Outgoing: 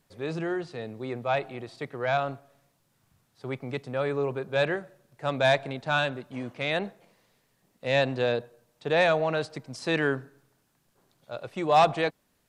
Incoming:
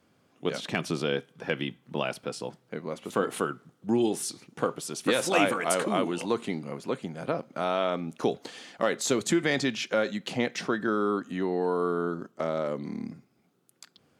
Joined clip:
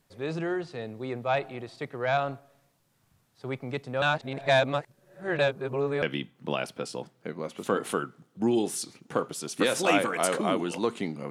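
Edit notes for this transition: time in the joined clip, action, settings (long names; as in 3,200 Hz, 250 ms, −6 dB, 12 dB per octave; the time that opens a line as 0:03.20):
outgoing
0:04.02–0:06.02: reverse
0:06.02: continue with incoming from 0:01.49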